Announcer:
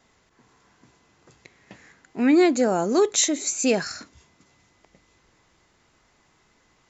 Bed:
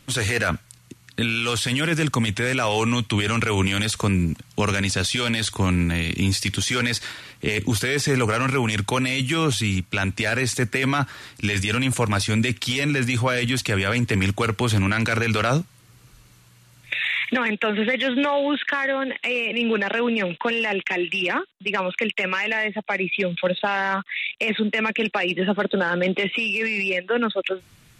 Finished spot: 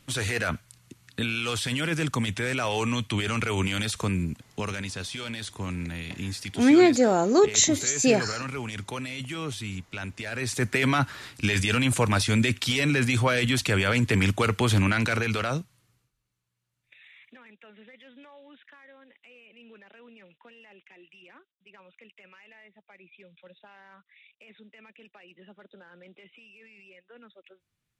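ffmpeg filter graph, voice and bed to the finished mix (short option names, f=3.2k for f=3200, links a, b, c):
-filter_complex "[0:a]adelay=4400,volume=0.5dB[a];[1:a]volume=5dB,afade=t=out:st=3.97:d=0.95:silence=0.473151,afade=t=in:st=10.3:d=0.46:silence=0.298538,afade=t=out:st=14.82:d=1.29:silence=0.0398107[b];[a][b]amix=inputs=2:normalize=0"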